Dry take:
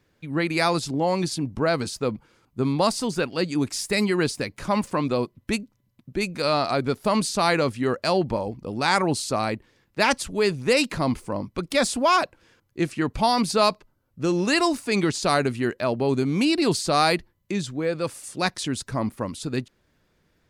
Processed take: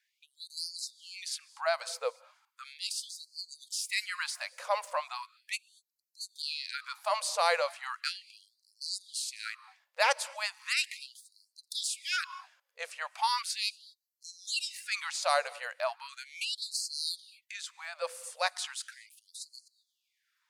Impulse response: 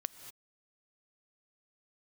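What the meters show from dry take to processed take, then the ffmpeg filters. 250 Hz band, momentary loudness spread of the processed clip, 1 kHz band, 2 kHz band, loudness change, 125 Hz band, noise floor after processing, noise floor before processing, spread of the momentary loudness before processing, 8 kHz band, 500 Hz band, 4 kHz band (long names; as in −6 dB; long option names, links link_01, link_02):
below −40 dB, 16 LU, −10.0 dB, −7.5 dB, −10.0 dB, below −40 dB, −82 dBFS, −68 dBFS, 9 LU, −5.0 dB, −14.0 dB, −5.5 dB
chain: -filter_complex "[0:a]asplit=2[link_01][link_02];[1:a]atrim=start_sample=2205,lowshelf=frequency=110:gain=7.5[link_03];[link_02][link_03]afir=irnorm=-1:irlink=0,volume=-6.5dB[link_04];[link_01][link_04]amix=inputs=2:normalize=0,afftfilt=real='re*gte(b*sr/1024,450*pow(4100/450,0.5+0.5*sin(2*PI*0.37*pts/sr)))':imag='im*gte(b*sr/1024,450*pow(4100/450,0.5+0.5*sin(2*PI*0.37*pts/sr)))':win_size=1024:overlap=0.75,volume=-8dB"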